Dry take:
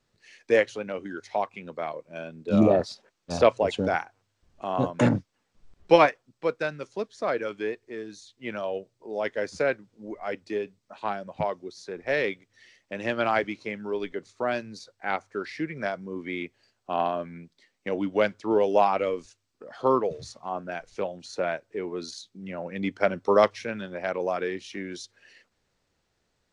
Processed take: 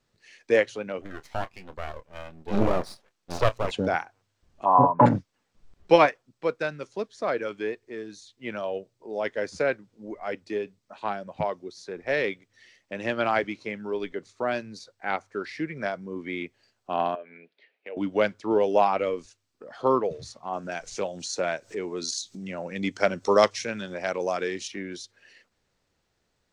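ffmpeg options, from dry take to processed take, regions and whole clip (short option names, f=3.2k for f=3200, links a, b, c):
-filter_complex "[0:a]asettb=1/sr,asplit=3[a][b][c];[a]atrim=end=1.014[d];[b]atrim=start=1.01:end=3.71,asetpts=PTS-STARTPTS,afade=t=in:d=0.004:c=qsin,afade=t=out:st=2.696:d=0.004:c=qsin,aeval=exprs='max(val(0),0)':c=same,asplit=2[e][f];[f]adelay=26,volume=-13.5dB[g];[e][g]amix=inputs=2:normalize=0,atrim=end_sample=119070[h];[c]atrim=start=3.706[i];[d][h]acrossfade=d=0.004:c1=hsin:c2=qsin[j];[j][i]acrossfade=d=0.004:c1=qsin:c2=hsin,asettb=1/sr,asplit=3[k][l][m];[k]atrim=end=4.654[n];[l]atrim=start=4.65:end=5.06,asetpts=PTS-STARTPTS,afade=t=in:d=0.004:c=qsin,afade=t=out:st=0.406:d=0.004:c=qsin,lowpass=f=970:t=q:w=8.9,aecho=1:1:7:0.5,atrim=end_sample=18081[o];[m]atrim=start=5.056[p];[n][o]acrossfade=d=0.004:c1=hsin:c2=qsin[q];[q][p]acrossfade=d=0.004:c1=qsin:c2=hsin,asettb=1/sr,asplit=3[r][s][t];[r]atrim=end=17.154[u];[s]atrim=start=17.15:end=17.97,asetpts=PTS-STARTPTS,afade=t=in:d=0.004:c=qsin,afade=t=out:st=0.816:d=0.004:c=qsin,highpass=410,equalizer=f=440:t=q:w=4:g=9,equalizer=f=650:t=q:w=4:g=6,equalizer=f=1.1k:t=q:w=4:g=-6,equalizer=f=1.6k:t=q:w=4:g=3,equalizer=f=2.5k:t=q:w=4:g=9,lowpass=f=3.6k:w=0.5412,lowpass=f=3.6k:w=1.3066,acompressor=threshold=-45dB:ratio=2:attack=3.2:release=140:knee=1:detection=peak[v];[t]atrim=start=17.966[w];[u][v]acrossfade=d=0.004:c1=hsin:c2=qsin[x];[x][w]acrossfade=d=0.004:c1=qsin:c2=hsin,asettb=1/sr,asplit=3[y][z][aa];[y]atrim=end=20.534[ab];[z]atrim=start=20.53:end=24.68,asetpts=PTS-STARTPTS,afade=t=in:d=0.004:c=qsin,afade=t=out:st=4.146:d=0.004:c=qsin,equalizer=f=6.9k:t=o:w=1.4:g=13,acompressor=mode=upward:threshold=-31dB:ratio=2.5:attack=3.2:release=140:knee=2.83:detection=peak[ac];[aa]atrim=start=24.676[ad];[ab][ac]acrossfade=d=0.004:c1=hsin:c2=qsin[ae];[ae][ad]acrossfade=d=0.004:c1=qsin:c2=hsin"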